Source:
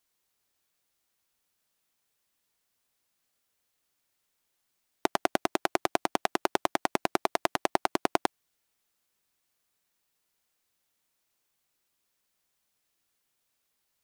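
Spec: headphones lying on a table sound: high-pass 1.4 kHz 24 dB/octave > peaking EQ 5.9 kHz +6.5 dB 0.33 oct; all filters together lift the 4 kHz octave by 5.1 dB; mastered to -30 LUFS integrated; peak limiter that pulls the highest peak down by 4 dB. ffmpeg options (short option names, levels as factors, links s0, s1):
-af "equalizer=f=4000:t=o:g=5.5,alimiter=limit=0.501:level=0:latency=1,highpass=f=1400:w=0.5412,highpass=f=1400:w=1.3066,equalizer=f=5900:t=o:w=0.33:g=6.5,volume=2"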